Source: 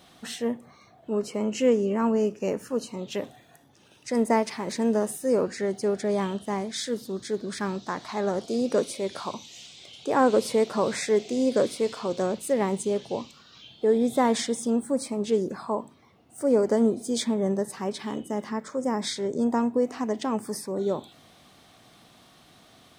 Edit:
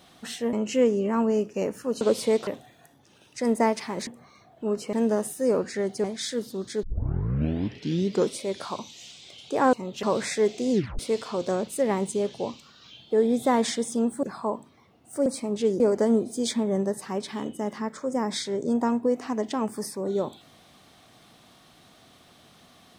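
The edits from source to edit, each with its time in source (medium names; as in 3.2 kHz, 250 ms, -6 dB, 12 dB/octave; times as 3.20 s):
0.53–1.39 s: move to 4.77 s
2.87–3.17 s: swap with 10.28–10.74 s
5.88–6.59 s: delete
7.38 s: tape start 1.57 s
11.42 s: tape stop 0.28 s
14.94–15.48 s: move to 16.51 s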